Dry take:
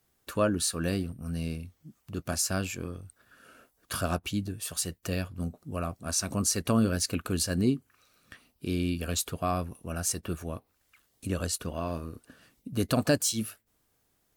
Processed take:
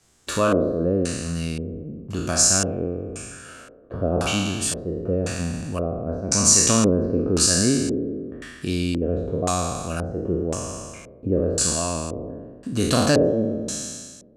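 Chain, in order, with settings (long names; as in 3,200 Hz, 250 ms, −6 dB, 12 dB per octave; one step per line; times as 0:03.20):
peak hold with a decay on every bin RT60 1.43 s
in parallel at +2 dB: downward compressor, threshold −38 dBFS, peak gain reduction 19 dB
on the sum: auto-filter low-pass square 0.95 Hz 480–7,400 Hz
level +2 dB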